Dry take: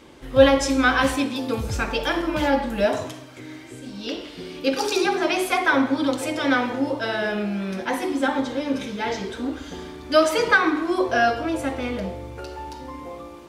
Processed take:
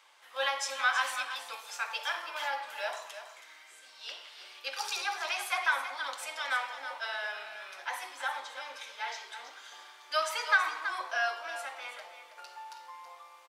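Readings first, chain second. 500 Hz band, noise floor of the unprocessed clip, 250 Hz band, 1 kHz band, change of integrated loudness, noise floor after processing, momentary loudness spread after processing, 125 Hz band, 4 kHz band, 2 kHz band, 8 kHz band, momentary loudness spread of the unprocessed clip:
-20.5 dB, -41 dBFS, under -40 dB, -9.0 dB, -11.0 dB, -55 dBFS, 19 LU, under -40 dB, -7.0 dB, -7.0 dB, -7.0 dB, 18 LU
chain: HPF 830 Hz 24 dB/oct; on a send: echo 0.325 s -10.5 dB; on the sum: gain -7.5 dB

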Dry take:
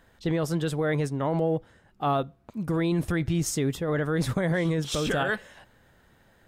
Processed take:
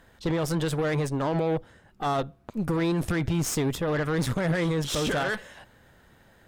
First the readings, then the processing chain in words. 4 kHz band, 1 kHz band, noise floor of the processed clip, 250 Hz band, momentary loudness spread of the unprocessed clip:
+1.5 dB, 0.0 dB, -58 dBFS, 0.0 dB, 4 LU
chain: added harmonics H 4 -19 dB, 8 -24 dB, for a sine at -16.5 dBFS; limiter -21.5 dBFS, peak gain reduction 6 dB; gain +3 dB

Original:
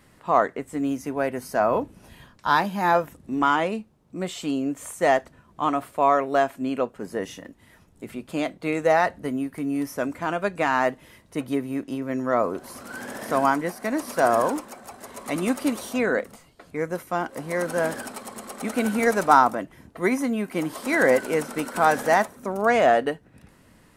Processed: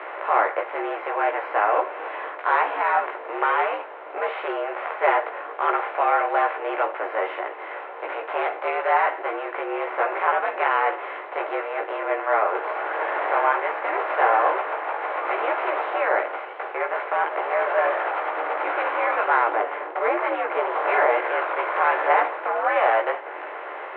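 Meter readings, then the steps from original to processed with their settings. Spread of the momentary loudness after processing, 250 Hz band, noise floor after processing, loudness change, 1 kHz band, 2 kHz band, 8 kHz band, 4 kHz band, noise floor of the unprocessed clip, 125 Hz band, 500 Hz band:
10 LU, -13.0 dB, -36 dBFS, +0.5 dB, +3.0 dB, +3.5 dB, under -40 dB, -3.0 dB, -57 dBFS, under -40 dB, 0.0 dB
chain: per-bin compression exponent 0.4; mistuned SSB +89 Hz 340–2800 Hz; chorus voices 6, 0.41 Hz, delay 16 ms, depth 3.5 ms; gain -3 dB

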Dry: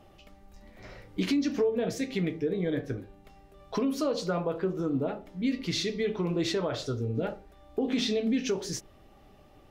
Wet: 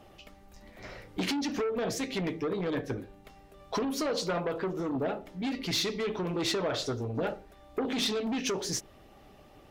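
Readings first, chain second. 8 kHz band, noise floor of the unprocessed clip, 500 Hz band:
+3.5 dB, -56 dBFS, -2.0 dB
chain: added harmonics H 5 -15 dB, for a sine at -18 dBFS; low shelf 260 Hz -4.5 dB; harmonic-percussive split harmonic -4 dB

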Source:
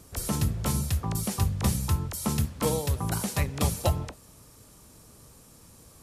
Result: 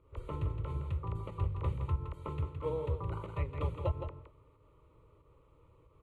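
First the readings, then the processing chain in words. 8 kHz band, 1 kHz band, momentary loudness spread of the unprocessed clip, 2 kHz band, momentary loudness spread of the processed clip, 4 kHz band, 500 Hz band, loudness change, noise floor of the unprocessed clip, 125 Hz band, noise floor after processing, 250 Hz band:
under -40 dB, -8.5 dB, 3 LU, -15.0 dB, 6 LU, -22.5 dB, -6.0 dB, -9.0 dB, -54 dBFS, -7.5 dB, -65 dBFS, -14.5 dB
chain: LPF 1600 Hz 12 dB/oct; pump 92 bpm, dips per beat 1, -9 dB, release 0.124 s; fixed phaser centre 1100 Hz, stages 8; on a send: echo 0.166 s -7.5 dB; on the sum: gain -5 dB

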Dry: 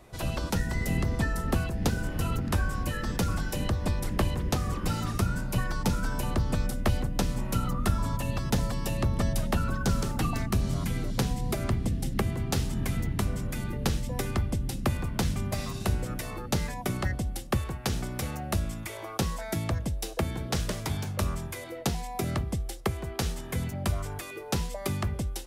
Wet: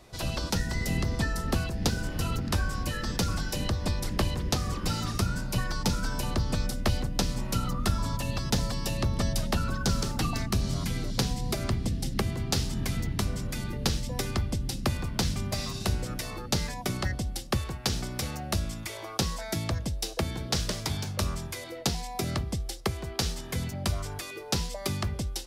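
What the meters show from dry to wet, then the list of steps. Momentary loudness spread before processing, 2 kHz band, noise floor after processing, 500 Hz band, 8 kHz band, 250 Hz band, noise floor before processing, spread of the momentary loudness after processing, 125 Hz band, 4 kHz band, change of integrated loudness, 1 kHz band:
4 LU, 0.0 dB, -40 dBFS, -1.0 dB, +3.0 dB, -1.0 dB, -40 dBFS, 4 LU, -1.0 dB, +5.5 dB, 0.0 dB, -0.5 dB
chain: bell 4800 Hz +8.5 dB 1.1 oct; gain -1 dB

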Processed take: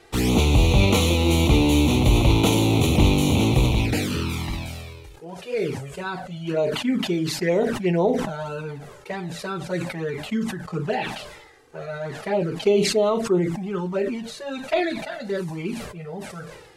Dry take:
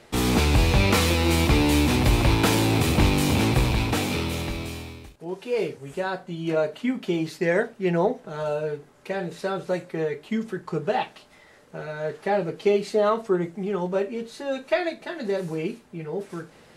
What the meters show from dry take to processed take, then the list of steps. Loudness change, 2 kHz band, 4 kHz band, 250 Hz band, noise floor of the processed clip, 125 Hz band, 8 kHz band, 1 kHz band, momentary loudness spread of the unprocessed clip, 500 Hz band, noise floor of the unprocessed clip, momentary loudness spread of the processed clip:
+2.0 dB, -1.0 dB, +2.0 dB, +2.5 dB, -45 dBFS, +3.0 dB, +1.5 dB, -1.0 dB, 13 LU, +1.0 dB, -53 dBFS, 17 LU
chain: envelope flanger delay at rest 2.7 ms, full sweep at -18 dBFS; sustainer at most 51 dB/s; gain +2.5 dB

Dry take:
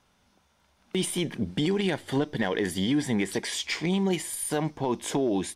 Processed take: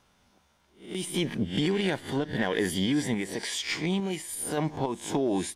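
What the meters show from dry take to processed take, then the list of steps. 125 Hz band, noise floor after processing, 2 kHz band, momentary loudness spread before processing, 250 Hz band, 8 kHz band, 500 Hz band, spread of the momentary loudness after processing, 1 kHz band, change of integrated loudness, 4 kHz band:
-1.0 dB, -66 dBFS, 0.0 dB, 4 LU, -1.5 dB, -2.0 dB, -1.5 dB, 5 LU, -1.0 dB, -1.0 dB, -0.5 dB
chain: spectral swells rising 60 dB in 0.34 s; random-step tremolo

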